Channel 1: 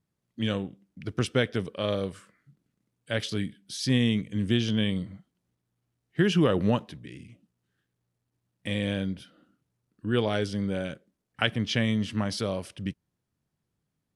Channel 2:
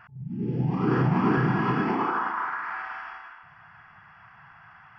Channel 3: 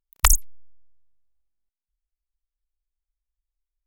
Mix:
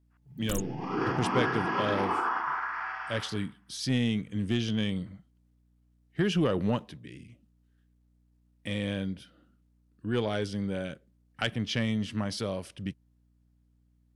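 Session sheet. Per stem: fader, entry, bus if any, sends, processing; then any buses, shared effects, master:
-2.5 dB, 0.00 s, no send, soft clip -14.5 dBFS, distortion -20 dB
-2.0 dB, 0.10 s, no send, expander -39 dBFS; tone controls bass -14 dB, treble +8 dB
-14.0 dB, 0.25 s, no send, limiter -10 dBFS, peak gain reduction 8 dB; spectral gate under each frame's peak -30 dB strong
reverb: off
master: hum 60 Hz, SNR 34 dB

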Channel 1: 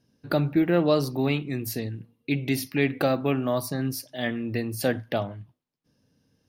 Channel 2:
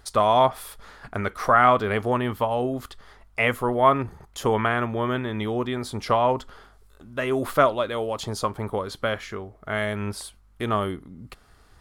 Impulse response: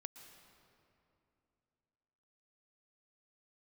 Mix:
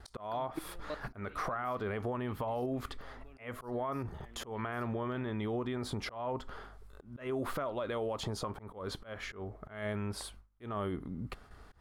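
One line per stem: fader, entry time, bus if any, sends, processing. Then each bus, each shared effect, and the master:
-2.0 dB, 0.00 s, no send, tilt +2 dB/oct; level quantiser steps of 21 dB; auto duck -13 dB, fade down 0.85 s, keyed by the second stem
+2.0 dB, 0.00 s, no send, gate with hold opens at -46 dBFS; compressor 6:1, threshold -27 dBFS, peak gain reduction 14.5 dB; limiter -26 dBFS, peak gain reduction 11 dB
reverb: off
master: high shelf 3200 Hz -10 dB; auto swell 0.207 s; compressor, threshold -31 dBFS, peak gain reduction 3.5 dB

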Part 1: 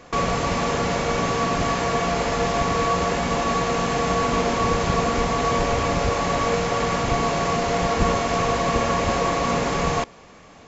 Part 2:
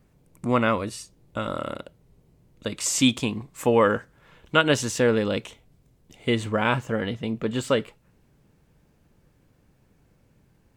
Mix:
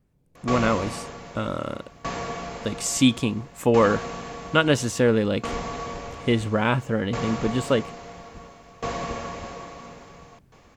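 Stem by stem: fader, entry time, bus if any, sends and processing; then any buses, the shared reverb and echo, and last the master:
-3.0 dB, 0.35 s, no send, dB-ramp tremolo decaying 0.59 Hz, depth 23 dB; auto duck -13 dB, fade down 1.20 s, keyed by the second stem
-11.0 dB, 0.00 s, no send, low shelf 390 Hz +5 dB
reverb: off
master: AGC gain up to 10 dB

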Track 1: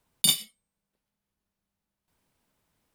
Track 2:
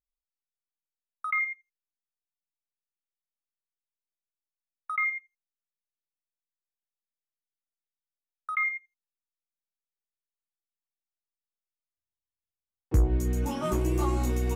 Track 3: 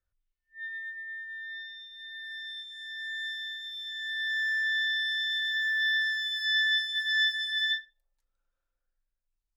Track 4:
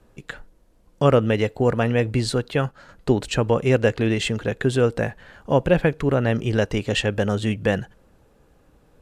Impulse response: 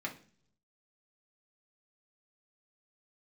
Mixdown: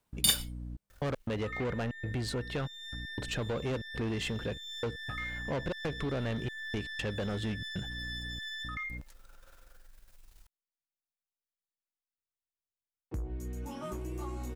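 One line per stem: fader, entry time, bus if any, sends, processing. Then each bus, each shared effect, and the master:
-4.0 dB, 0.00 s, no bus, no send, modulation noise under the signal 15 dB
-7.5 dB, 0.20 s, bus A, no send, dry
-9.5 dB, 0.90 s, bus A, no send, half-wave gain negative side -7 dB; fast leveller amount 70%
-0.5 dB, 0.00 s, bus A, no send, high shelf 5200 Hz -5 dB; hum 60 Hz, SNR 16 dB; step gate ".xxxxx..x.xxxxx" 118 bpm -60 dB
bus A: 0.0 dB, soft clip -21.5 dBFS, distortion -7 dB; compressor 2:1, threshold -38 dBFS, peak gain reduction 8 dB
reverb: off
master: dry

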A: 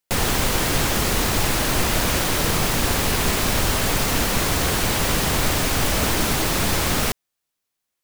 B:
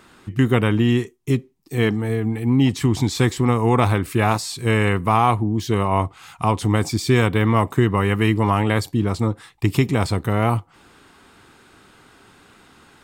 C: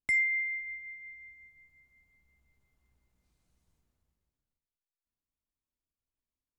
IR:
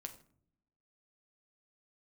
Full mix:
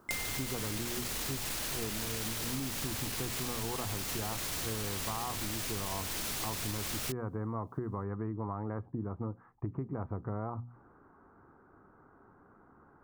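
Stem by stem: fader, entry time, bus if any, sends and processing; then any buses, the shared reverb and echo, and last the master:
-3.0 dB, 0.00 s, no send, high shelf 2100 Hz +9.5 dB; limiter -14 dBFS, peak gain reduction 10.5 dB
-8.0 dB, 0.00 s, no send, steep low-pass 1400 Hz; notches 60/120/180/240 Hz
-5.5 dB, 0.00 s, no send, dry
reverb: off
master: compressor, threshold -34 dBFS, peak gain reduction 14.5 dB

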